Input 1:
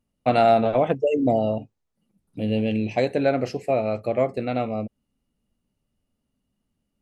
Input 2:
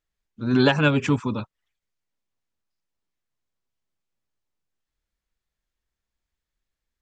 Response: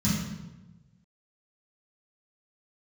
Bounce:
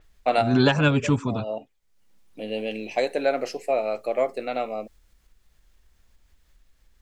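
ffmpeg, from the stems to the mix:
-filter_complex "[0:a]highpass=420,volume=0dB[a];[1:a]lowshelf=f=72:g=10.5,acompressor=mode=upward:threshold=-39dB:ratio=2.5,volume=-1.5dB,asplit=2[b][c];[c]apad=whole_len=309370[d];[a][d]sidechaincompress=threshold=-37dB:ratio=6:attack=12:release=157[e];[e][b]amix=inputs=2:normalize=0,adynamicequalizer=threshold=0.00708:dfrequency=5200:dqfactor=0.7:tfrequency=5200:tqfactor=0.7:attack=5:release=100:ratio=0.375:range=3:mode=boostabove:tftype=highshelf"

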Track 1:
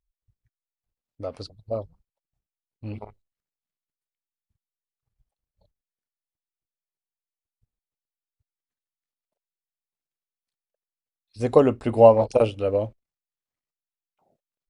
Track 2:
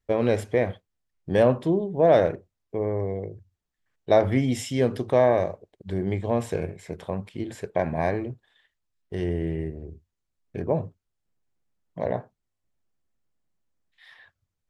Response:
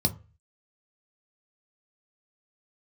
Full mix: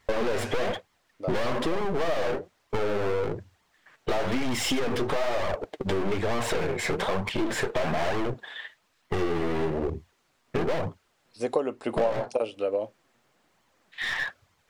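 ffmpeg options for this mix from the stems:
-filter_complex "[0:a]highpass=320,volume=0.5dB[a];[1:a]asplit=2[b][c];[c]highpass=f=720:p=1,volume=35dB,asoftclip=type=tanh:threshold=-7.5dB[d];[b][d]amix=inputs=2:normalize=0,lowpass=f=2.2k:p=1,volume=-6dB,aeval=exprs='clip(val(0),-1,0.0531)':c=same,flanger=delay=0.9:depth=7.5:regen=41:speed=1.1:shape=sinusoidal,volume=2.5dB[e];[a][e]amix=inputs=2:normalize=0,acompressor=threshold=-23dB:ratio=5"

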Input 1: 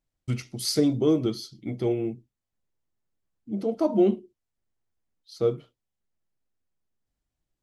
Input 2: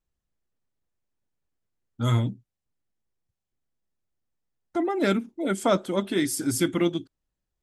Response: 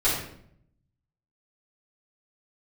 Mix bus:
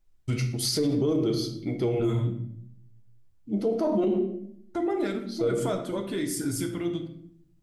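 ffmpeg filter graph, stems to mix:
-filter_complex "[0:a]acontrast=67,volume=-5dB,asplit=2[a][b];[b]volume=-16dB[c];[1:a]lowshelf=f=120:g=11,alimiter=limit=-22.5dB:level=0:latency=1:release=217,volume=-1.5dB,asplit=2[d][e];[e]volume=-15dB[f];[2:a]atrim=start_sample=2205[g];[c][f]amix=inputs=2:normalize=0[h];[h][g]afir=irnorm=-1:irlink=0[i];[a][d][i]amix=inputs=3:normalize=0,alimiter=limit=-18dB:level=0:latency=1:release=34"

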